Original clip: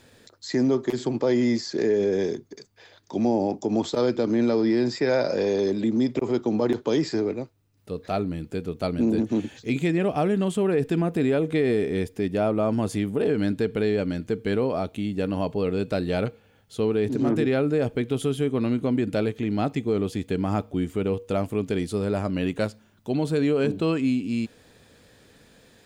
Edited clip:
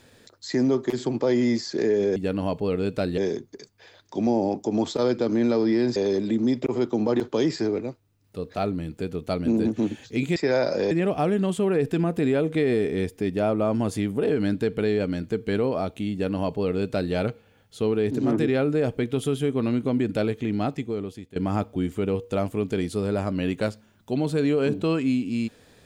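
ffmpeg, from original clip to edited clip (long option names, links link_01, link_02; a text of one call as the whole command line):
ffmpeg -i in.wav -filter_complex "[0:a]asplit=7[link_01][link_02][link_03][link_04][link_05][link_06][link_07];[link_01]atrim=end=2.162[link_08];[link_02]atrim=start=15.098:end=16.122[link_09];[link_03]atrim=start=2.158:end=4.942[link_10];[link_04]atrim=start=5.488:end=9.892[link_11];[link_05]atrim=start=4.938:end=5.492[link_12];[link_06]atrim=start=9.888:end=20.34,asetpts=PTS-STARTPTS,afade=type=out:start_time=9.622:duration=0.83:silence=0.112202[link_13];[link_07]atrim=start=20.34,asetpts=PTS-STARTPTS,afade=type=in:duration=0.004:curve=hsin:silence=0.112202[link_14];[link_08][link_09]acrossfade=duration=0.004:curve1=hsin:curve2=hsin[link_15];[link_15][link_10]acrossfade=duration=0.004:curve1=hsin:curve2=hsin[link_16];[link_16][link_11]acrossfade=duration=0.004:curve1=hsin:curve2=hsin[link_17];[link_17][link_12]acrossfade=duration=0.004:curve1=hsin:curve2=hsin[link_18];[link_13][link_14]concat=n=2:v=0:a=1[link_19];[link_18][link_19]acrossfade=duration=0.004:curve1=hsin:curve2=hsin" out.wav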